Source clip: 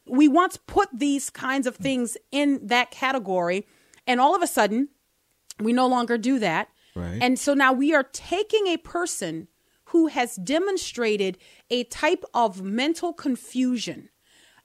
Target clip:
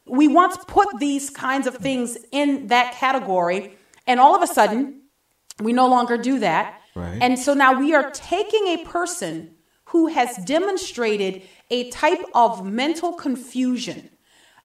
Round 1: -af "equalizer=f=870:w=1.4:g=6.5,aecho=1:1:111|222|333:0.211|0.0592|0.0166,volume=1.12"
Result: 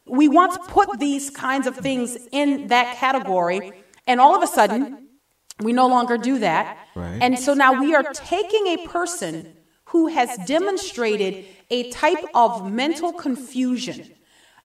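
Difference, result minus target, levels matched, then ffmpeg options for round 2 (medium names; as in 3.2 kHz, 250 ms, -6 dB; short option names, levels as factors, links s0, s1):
echo 32 ms late
-af "equalizer=f=870:w=1.4:g=6.5,aecho=1:1:79|158|237:0.211|0.0592|0.0166,volume=1.12"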